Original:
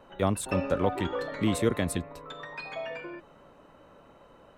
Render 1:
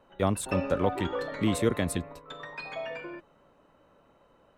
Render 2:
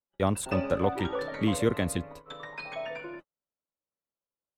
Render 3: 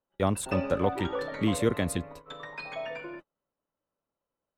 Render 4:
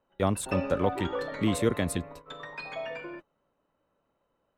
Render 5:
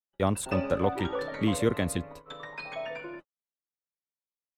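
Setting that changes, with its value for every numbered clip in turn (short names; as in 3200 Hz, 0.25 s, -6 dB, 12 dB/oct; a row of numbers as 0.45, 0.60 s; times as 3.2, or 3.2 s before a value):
gate, range: -7, -46, -34, -21, -59 dB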